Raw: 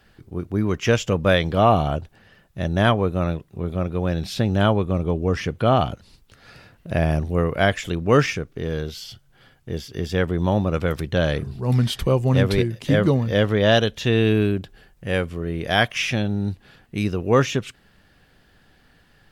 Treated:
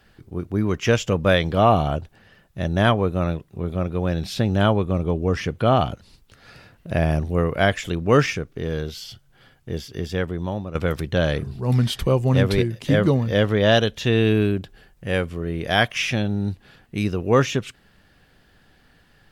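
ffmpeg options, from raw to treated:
-filter_complex "[0:a]asplit=2[a][b];[a]atrim=end=10.75,asetpts=PTS-STARTPTS,afade=t=out:st=9.83:d=0.92:silence=0.251189[c];[b]atrim=start=10.75,asetpts=PTS-STARTPTS,afade=t=in:d=0.004:c=hsin:silence=0.251189[d];[c][d]concat=n=2:v=0:a=1"

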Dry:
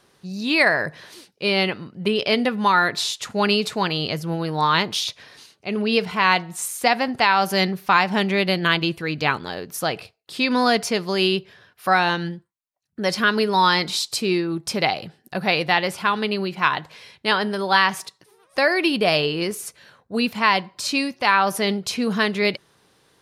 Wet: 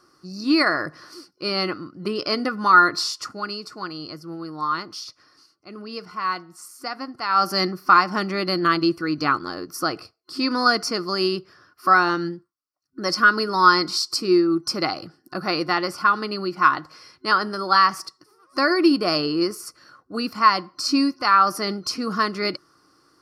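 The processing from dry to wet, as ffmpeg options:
-filter_complex "[0:a]asplit=3[a][b][c];[a]atrim=end=3.41,asetpts=PTS-STARTPTS,afade=t=out:st=3.21:d=0.2:silence=0.334965[d];[b]atrim=start=3.41:end=7.22,asetpts=PTS-STARTPTS,volume=-9.5dB[e];[c]atrim=start=7.22,asetpts=PTS-STARTPTS,afade=t=in:d=0.2:silence=0.334965[f];[d][e][f]concat=n=3:v=0:a=1,superequalizer=6b=3.55:10b=3.98:12b=0.562:13b=0.398:14b=2.82,volume=-5dB"

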